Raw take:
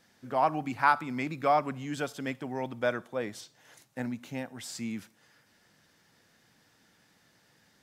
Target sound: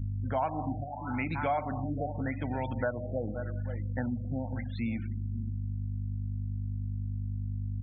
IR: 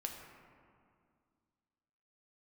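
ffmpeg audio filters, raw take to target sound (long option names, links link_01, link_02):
-filter_complex "[0:a]highshelf=frequency=7400:gain=11,aeval=exprs='val(0)+0.00708*(sin(2*PI*50*n/s)+sin(2*PI*2*50*n/s)/2+sin(2*PI*3*50*n/s)/3+sin(2*PI*4*50*n/s)/4+sin(2*PI*5*50*n/s)/5)':channel_layout=same,equalizer=frequency=100:width_type=o:width=0.33:gain=11,equalizer=frequency=400:width_type=o:width=0.33:gain=-9,equalizer=frequency=8000:width_type=o:width=0.33:gain=-11,asplit=2[link_01][link_02];[link_02]adelay=524.8,volume=-15dB,highshelf=frequency=4000:gain=-11.8[link_03];[link_01][link_03]amix=inputs=2:normalize=0,asplit=2[link_04][link_05];[1:a]atrim=start_sample=2205,afade=type=out:start_time=0.37:duration=0.01,atrim=end_sample=16758[link_06];[link_05][link_06]afir=irnorm=-1:irlink=0,volume=-2.5dB[link_07];[link_04][link_07]amix=inputs=2:normalize=0,acompressor=threshold=-38dB:ratio=3,afftfilt=real='re*gte(hypot(re,im),0.00447)':imag='im*gte(hypot(re,im),0.00447)':win_size=1024:overlap=0.75,bandreject=frequency=1200:width=6.2,acontrast=22,afftfilt=real='re*lt(b*sr/1024,770*pow(4700/770,0.5+0.5*sin(2*PI*0.87*pts/sr)))':imag='im*lt(b*sr/1024,770*pow(4700/770,0.5+0.5*sin(2*PI*0.87*pts/sr)))':win_size=1024:overlap=0.75,volume=1.5dB"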